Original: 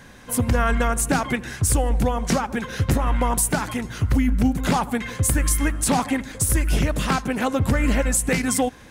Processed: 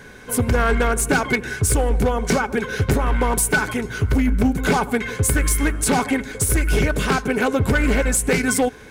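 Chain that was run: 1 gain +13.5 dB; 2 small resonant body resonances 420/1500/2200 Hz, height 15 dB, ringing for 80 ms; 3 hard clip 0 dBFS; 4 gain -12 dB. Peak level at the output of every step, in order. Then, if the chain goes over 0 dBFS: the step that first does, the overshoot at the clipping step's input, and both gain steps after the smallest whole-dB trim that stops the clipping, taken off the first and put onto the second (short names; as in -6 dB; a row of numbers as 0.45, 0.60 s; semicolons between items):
+5.0, +10.0, 0.0, -12.0 dBFS; step 1, 10.0 dB; step 1 +3.5 dB, step 4 -2 dB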